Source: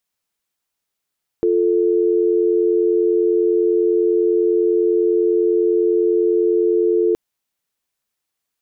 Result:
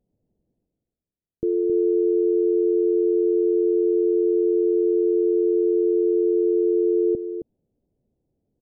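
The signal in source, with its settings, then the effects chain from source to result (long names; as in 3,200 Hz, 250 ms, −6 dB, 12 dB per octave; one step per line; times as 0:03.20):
call progress tone dial tone, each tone −16 dBFS 5.72 s
reversed playback
upward compression, threshold −36 dBFS
reversed playback
Gaussian smoothing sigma 20 samples
single-tap delay 268 ms −8 dB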